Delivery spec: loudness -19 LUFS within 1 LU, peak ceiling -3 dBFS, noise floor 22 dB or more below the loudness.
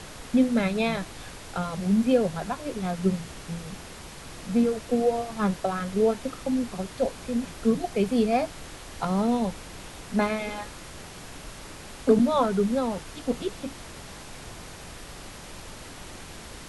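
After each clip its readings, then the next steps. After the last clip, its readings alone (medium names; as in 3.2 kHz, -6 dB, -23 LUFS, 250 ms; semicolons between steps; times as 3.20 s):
noise floor -43 dBFS; noise floor target -49 dBFS; loudness -26.5 LUFS; peak level -8.0 dBFS; loudness target -19.0 LUFS
-> noise print and reduce 6 dB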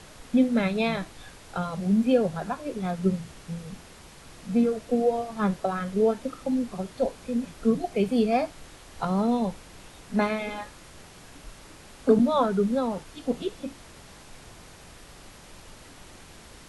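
noise floor -49 dBFS; loudness -26.5 LUFS; peak level -8.0 dBFS; loudness target -19.0 LUFS
-> trim +7.5 dB; peak limiter -3 dBFS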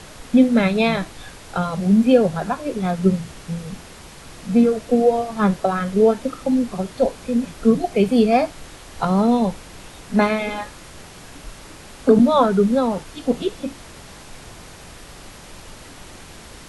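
loudness -19.0 LUFS; peak level -3.0 dBFS; noise floor -41 dBFS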